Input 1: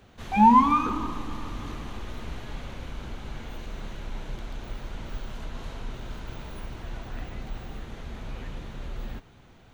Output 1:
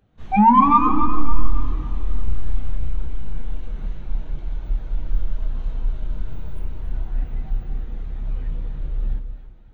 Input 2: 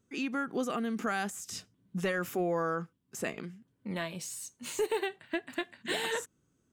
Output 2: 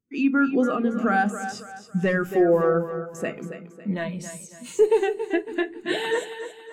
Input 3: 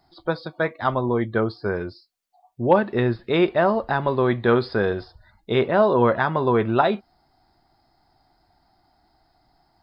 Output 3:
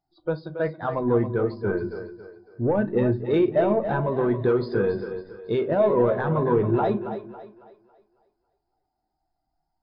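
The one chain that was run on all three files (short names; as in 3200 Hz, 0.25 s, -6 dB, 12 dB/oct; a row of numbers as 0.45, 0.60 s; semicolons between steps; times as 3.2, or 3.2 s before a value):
wow and flutter 16 cents; limiter -13.5 dBFS; soft clip -18 dBFS; on a send: split-band echo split 310 Hz, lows 0.181 s, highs 0.276 s, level -7 dB; on the sum: shoebox room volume 260 m³, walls furnished, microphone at 0.53 m; spectral expander 1.5:1; match loudness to -24 LUFS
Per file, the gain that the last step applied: +10.0, +10.5, +2.0 dB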